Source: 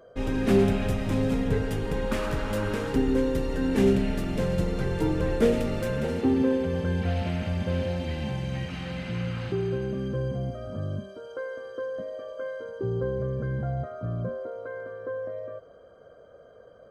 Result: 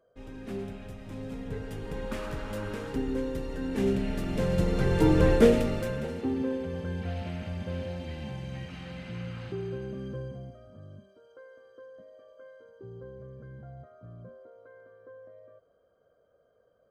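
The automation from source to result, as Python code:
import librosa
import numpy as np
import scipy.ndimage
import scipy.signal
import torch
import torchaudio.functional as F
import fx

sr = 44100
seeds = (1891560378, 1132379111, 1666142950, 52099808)

y = fx.gain(x, sr, db=fx.line((0.94, -16.0), (2.0, -7.0), (3.71, -7.0), (5.25, 5.5), (6.14, -7.0), (10.12, -7.0), (10.72, -16.0)))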